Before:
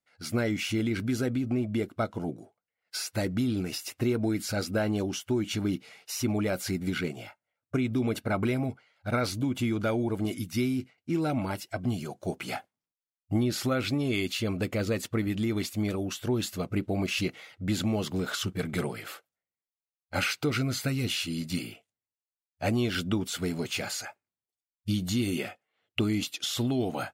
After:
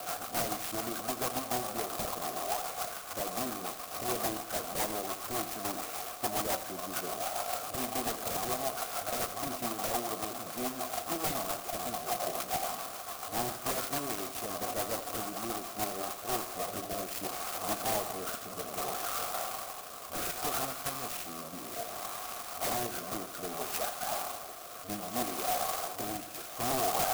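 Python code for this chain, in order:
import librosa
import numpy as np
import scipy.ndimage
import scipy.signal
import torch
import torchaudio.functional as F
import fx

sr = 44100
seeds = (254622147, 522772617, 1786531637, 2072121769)

p1 = fx.delta_mod(x, sr, bps=64000, step_db=-27.5)
p2 = fx.peak_eq(p1, sr, hz=1400.0, db=9.5, octaves=1.2)
p3 = fx.level_steps(p2, sr, step_db=13)
p4 = p2 + (p3 * 10.0 ** (0.0 / 20.0))
p5 = scipy.signal.lfilter(np.full(6, 1.0 / 6), 1.0, p4)
p6 = (np.mod(10.0 ** (13.5 / 20.0) * p5 + 1.0, 2.0) - 1.0) / 10.0 ** (13.5 / 20.0)
p7 = fx.vowel_filter(p6, sr, vowel='a')
p8 = 10.0 ** (-31.0 / 20.0) * (np.abs((p7 / 10.0 ** (-31.0 / 20.0) + 3.0) % 4.0 - 2.0) - 1.0)
p9 = fx.rotary_switch(p8, sr, hz=7.0, then_hz=0.65, switch_at_s=15.6)
p10 = p9 + fx.echo_feedback(p9, sr, ms=83, feedback_pct=55, wet_db=-12.0, dry=0)
p11 = fx.clock_jitter(p10, sr, seeds[0], jitter_ms=0.12)
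y = p11 * 10.0 ** (7.0 / 20.0)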